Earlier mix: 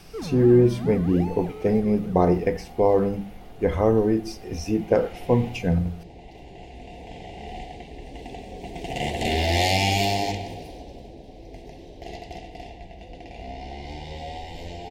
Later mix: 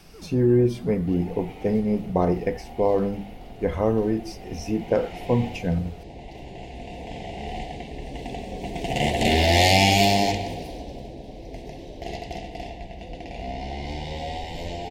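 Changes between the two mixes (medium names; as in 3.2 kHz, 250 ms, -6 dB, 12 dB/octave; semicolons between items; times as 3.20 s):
first sound -8.5 dB; second sound +7.5 dB; reverb: off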